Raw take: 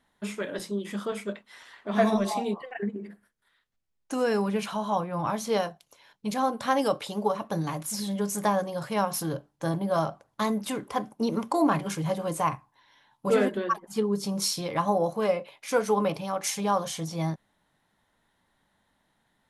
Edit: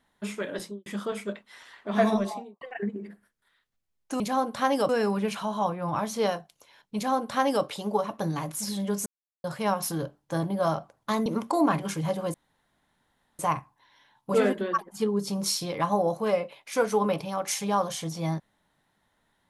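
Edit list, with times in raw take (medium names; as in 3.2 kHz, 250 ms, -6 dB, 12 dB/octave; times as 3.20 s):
0.60–0.86 s: studio fade out
2.11–2.61 s: studio fade out
6.26–6.95 s: copy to 4.20 s
8.37–8.75 s: mute
10.57–11.27 s: delete
12.35 s: insert room tone 1.05 s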